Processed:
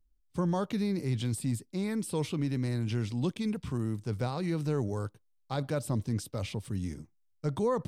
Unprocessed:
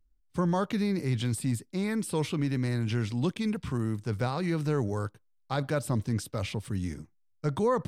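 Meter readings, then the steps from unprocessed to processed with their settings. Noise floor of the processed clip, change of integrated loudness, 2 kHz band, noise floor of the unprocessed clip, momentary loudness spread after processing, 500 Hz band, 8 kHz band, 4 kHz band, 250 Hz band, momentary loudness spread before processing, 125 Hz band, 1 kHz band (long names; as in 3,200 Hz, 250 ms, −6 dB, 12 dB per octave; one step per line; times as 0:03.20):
−70 dBFS, −2.5 dB, −6.0 dB, −68 dBFS, 6 LU, −2.5 dB, −2.0 dB, −3.0 dB, −2.0 dB, 6 LU, −2.0 dB, −4.5 dB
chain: parametric band 1,600 Hz −5 dB 1.3 octaves
level −2 dB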